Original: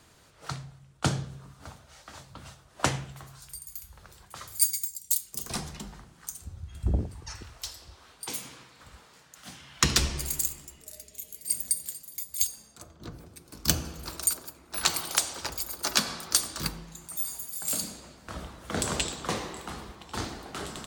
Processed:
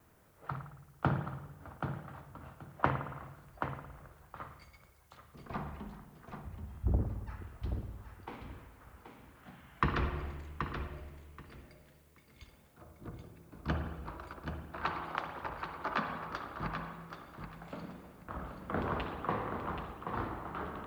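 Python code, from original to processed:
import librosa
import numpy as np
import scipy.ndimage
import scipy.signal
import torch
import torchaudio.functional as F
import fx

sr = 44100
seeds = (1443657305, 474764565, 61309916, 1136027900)

p1 = scipy.signal.sosfilt(scipy.signal.bessel(4, 1600.0, 'lowpass', norm='mag', fs=sr, output='sos'), x)
p2 = fx.dmg_noise_colour(p1, sr, seeds[0], colour='blue', level_db=-68.0)
p3 = fx.rev_spring(p2, sr, rt60_s=1.2, pass_ms=(54,), chirp_ms=50, drr_db=7.5)
p4 = fx.vibrato(p3, sr, rate_hz=1.9, depth_cents=28.0)
p5 = p4 + fx.echo_feedback(p4, sr, ms=779, feedback_pct=22, wet_db=-7.0, dry=0)
p6 = fx.dynamic_eq(p5, sr, hz=1100.0, q=1.5, threshold_db=-51.0, ratio=4.0, max_db=6)
y = p6 * librosa.db_to_amplitude(-4.5)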